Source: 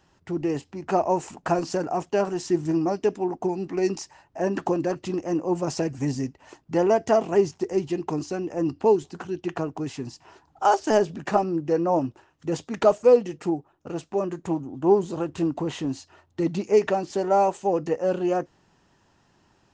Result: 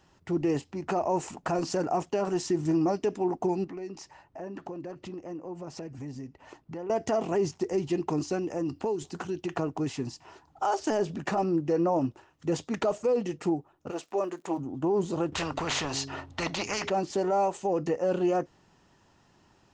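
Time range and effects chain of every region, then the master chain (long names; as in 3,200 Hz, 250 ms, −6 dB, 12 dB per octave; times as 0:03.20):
0:03.64–0:06.90: high-shelf EQ 5,600 Hz −12 dB + downward compressor 3 to 1, threshold −40 dBFS
0:08.38–0:09.57: high-shelf EQ 5,600 Hz +6 dB + downward compressor 4 to 1, threshold −27 dBFS
0:13.90–0:14.57: high-pass filter 400 Hz + surface crackle 120 per second −51 dBFS
0:15.32–0:16.90: high-frequency loss of the air 71 metres + hum removal 136.6 Hz, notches 3 + every bin compressed towards the loudest bin 4 to 1
whole clip: notch filter 1,600 Hz, Q 23; brickwall limiter −18.5 dBFS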